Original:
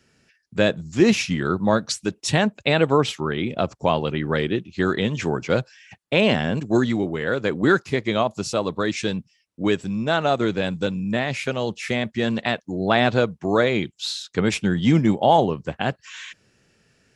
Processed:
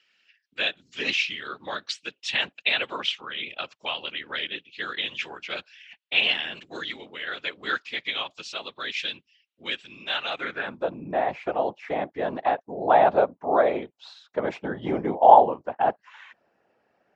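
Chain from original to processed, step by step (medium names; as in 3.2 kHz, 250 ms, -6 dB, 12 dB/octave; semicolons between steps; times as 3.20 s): distance through air 79 m; whisper effect; band-pass sweep 3 kHz -> 770 Hz, 10.28–10.87 s; trim +6 dB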